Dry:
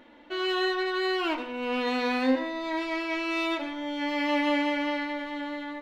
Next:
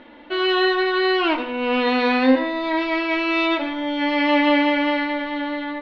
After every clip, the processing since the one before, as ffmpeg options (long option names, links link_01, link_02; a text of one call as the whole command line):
ffmpeg -i in.wav -af "lowpass=frequency=4400:width=0.5412,lowpass=frequency=4400:width=1.3066,volume=8.5dB" out.wav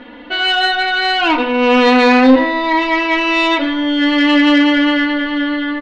ffmpeg -i in.wav -af "aecho=1:1:4.1:0.87,acontrast=85,volume=-1dB" out.wav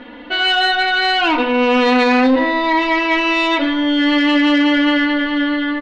ffmpeg -i in.wav -af "alimiter=limit=-7.5dB:level=0:latency=1:release=58" out.wav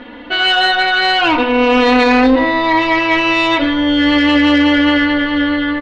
ffmpeg -i in.wav -af "tremolo=f=210:d=0.333,volume=4dB" out.wav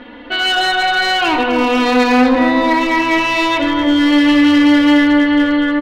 ffmpeg -i in.wav -filter_complex "[0:a]asoftclip=type=hard:threshold=-8dB,asplit=2[link_01][link_02];[link_02]adelay=254,lowpass=frequency=1200:poles=1,volume=-3dB,asplit=2[link_03][link_04];[link_04]adelay=254,lowpass=frequency=1200:poles=1,volume=0.37,asplit=2[link_05][link_06];[link_06]adelay=254,lowpass=frequency=1200:poles=1,volume=0.37,asplit=2[link_07][link_08];[link_08]adelay=254,lowpass=frequency=1200:poles=1,volume=0.37,asplit=2[link_09][link_10];[link_10]adelay=254,lowpass=frequency=1200:poles=1,volume=0.37[link_11];[link_01][link_03][link_05][link_07][link_09][link_11]amix=inputs=6:normalize=0,volume=-2dB" out.wav